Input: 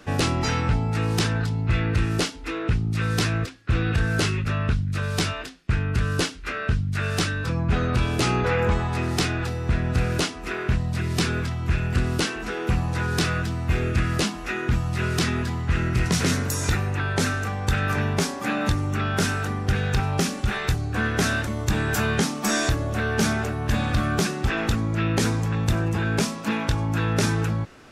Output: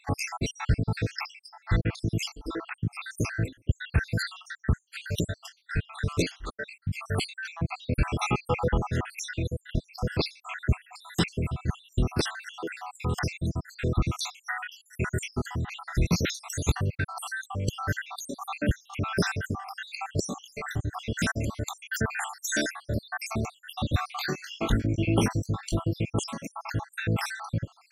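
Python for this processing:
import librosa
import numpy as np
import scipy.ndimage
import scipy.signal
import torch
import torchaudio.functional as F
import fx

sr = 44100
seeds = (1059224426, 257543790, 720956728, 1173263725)

y = fx.spec_dropout(x, sr, seeds[0], share_pct=76)
y = fx.doubler(y, sr, ms=21.0, db=-5.0, at=(24.07, 25.99))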